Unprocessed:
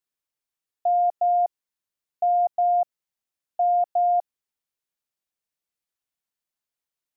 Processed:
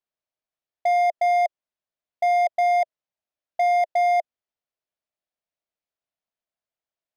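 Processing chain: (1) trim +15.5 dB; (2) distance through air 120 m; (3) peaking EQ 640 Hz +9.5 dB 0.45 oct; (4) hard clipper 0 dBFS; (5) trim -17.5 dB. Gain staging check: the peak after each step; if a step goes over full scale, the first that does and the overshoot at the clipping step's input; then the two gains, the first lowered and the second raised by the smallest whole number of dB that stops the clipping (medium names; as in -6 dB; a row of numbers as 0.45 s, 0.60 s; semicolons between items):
-1.0 dBFS, -1.5 dBFS, +5.5 dBFS, 0.0 dBFS, -17.5 dBFS; step 3, 5.5 dB; step 1 +9.5 dB, step 5 -11.5 dB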